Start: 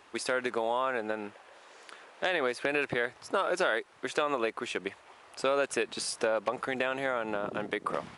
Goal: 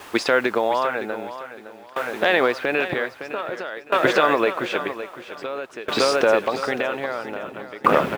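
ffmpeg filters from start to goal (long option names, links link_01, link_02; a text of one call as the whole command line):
ffmpeg -i in.wav -af "lowpass=4200,acrusher=bits=9:mix=0:aa=0.000001,aecho=1:1:561|1122|1683|2244|2805|3366|3927:0.447|0.241|0.13|0.0703|0.038|0.0205|0.0111,alimiter=level_in=16.5dB:limit=-1dB:release=50:level=0:latency=1,aeval=exprs='val(0)*pow(10,-21*if(lt(mod(0.51*n/s,1),2*abs(0.51)/1000),1-mod(0.51*n/s,1)/(2*abs(0.51)/1000),(mod(0.51*n/s,1)-2*abs(0.51)/1000)/(1-2*abs(0.51)/1000))/20)':channel_layout=same" out.wav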